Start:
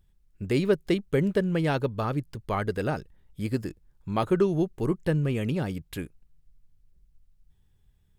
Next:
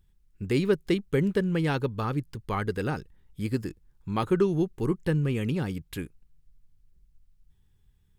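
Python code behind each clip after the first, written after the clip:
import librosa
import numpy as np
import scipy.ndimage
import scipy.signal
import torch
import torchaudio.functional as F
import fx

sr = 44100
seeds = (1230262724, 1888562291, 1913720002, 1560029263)

y = fx.peak_eq(x, sr, hz=630.0, db=-10.0, octaves=0.33)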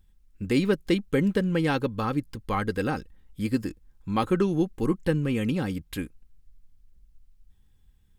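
y = x + 0.42 * np.pad(x, (int(3.8 * sr / 1000.0), 0))[:len(x)]
y = F.gain(torch.from_numpy(y), 2.0).numpy()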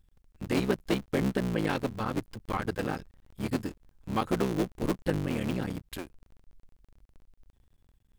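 y = fx.cycle_switch(x, sr, every=3, mode='muted')
y = F.gain(torch.from_numpy(y), -3.0).numpy()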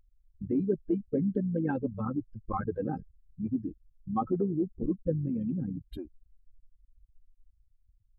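y = fx.spec_expand(x, sr, power=2.8)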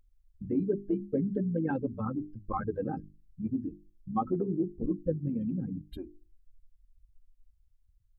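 y = fx.hum_notches(x, sr, base_hz=50, count=8)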